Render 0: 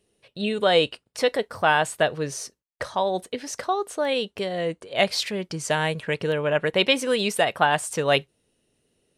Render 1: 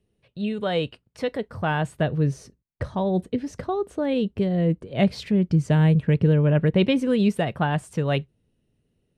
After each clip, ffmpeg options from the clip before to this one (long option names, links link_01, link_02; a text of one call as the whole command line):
ffmpeg -i in.wav -filter_complex "[0:a]bass=frequency=250:gain=13,treble=frequency=4000:gain=-8,acrossover=split=420[link_01][link_02];[link_01]dynaudnorm=framelen=300:gausssize=13:maxgain=12.5dB[link_03];[link_03][link_02]amix=inputs=2:normalize=0,volume=-7dB" out.wav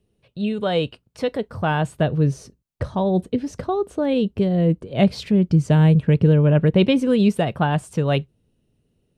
ffmpeg -i in.wav -af "equalizer=frequency=1900:width_type=o:width=0.53:gain=-4.5,volume=3.5dB" out.wav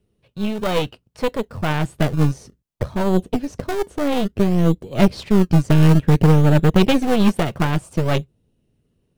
ffmpeg -i in.wav -filter_complex "[0:a]asplit=2[link_01][link_02];[link_02]acrusher=samples=23:mix=1:aa=0.000001:lfo=1:lforange=23:lforate=0.57,volume=-9.5dB[link_03];[link_01][link_03]amix=inputs=2:normalize=0,aeval=exprs='0.708*(cos(1*acos(clip(val(0)/0.708,-1,1)))-cos(1*PI/2))+0.126*(cos(6*acos(clip(val(0)/0.708,-1,1)))-cos(6*PI/2))':channel_layout=same,volume=-1.5dB" out.wav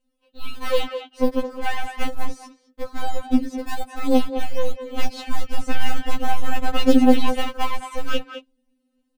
ffmpeg -i in.wav -filter_complex "[0:a]asplit=2[link_01][link_02];[link_02]adelay=210,highpass=300,lowpass=3400,asoftclip=type=hard:threshold=-14dB,volume=-8dB[link_03];[link_01][link_03]amix=inputs=2:normalize=0,afftfilt=real='re*3.46*eq(mod(b,12),0)':imag='im*3.46*eq(mod(b,12),0)':win_size=2048:overlap=0.75" out.wav